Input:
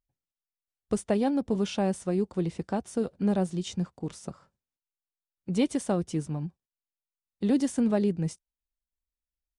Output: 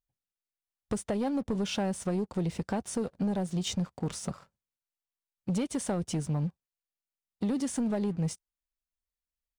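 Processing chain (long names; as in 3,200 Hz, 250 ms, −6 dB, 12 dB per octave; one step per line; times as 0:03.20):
parametric band 330 Hz −4.5 dB 0.46 octaves
downward compressor 10 to 1, threshold −32 dBFS, peak gain reduction 11.5 dB
leveller curve on the samples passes 2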